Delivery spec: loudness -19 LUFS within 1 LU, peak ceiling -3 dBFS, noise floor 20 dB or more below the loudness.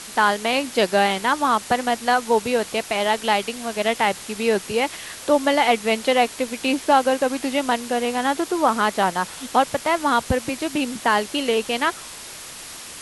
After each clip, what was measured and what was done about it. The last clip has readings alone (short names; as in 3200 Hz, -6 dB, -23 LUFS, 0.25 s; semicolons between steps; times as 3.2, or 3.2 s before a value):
noise floor -38 dBFS; noise floor target -41 dBFS; loudness -21.0 LUFS; peak -4.5 dBFS; loudness target -19.0 LUFS
-> noise print and reduce 6 dB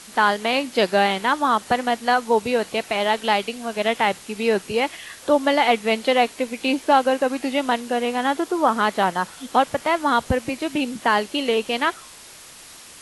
noise floor -43 dBFS; loudness -21.5 LUFS; peak -4.5 dBFS; loudness target -19.0 LUFS
-> gain +2.5 dB; limiter -3 dBFS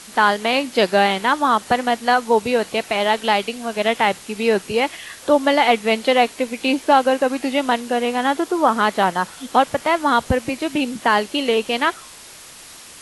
loudness -19.0 LUFS; peak -3.0 dBFS; noise floor -41 dBFS